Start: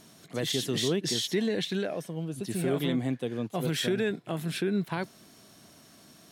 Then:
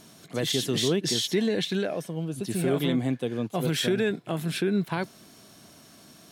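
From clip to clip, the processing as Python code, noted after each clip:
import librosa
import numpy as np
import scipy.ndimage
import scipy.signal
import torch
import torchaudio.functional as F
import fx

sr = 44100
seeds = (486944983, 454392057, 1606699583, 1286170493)

y = fx.notch(x, sr, hz=1900.0, q=27.0)
y = F.gain(torch.from_numpy(y), 3.0).numpy()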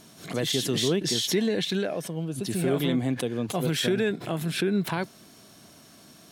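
y = fx.pre_swell(x, sr, db_per_s=120.0)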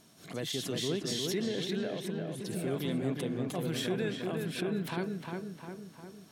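y = fx.echo_filtered(x, sr, ms=354, feedback_pct=57, hz=2700.0, wet_db=-3.5)
y = F.gain(torch.from_numpy(y), -9.0).numpy()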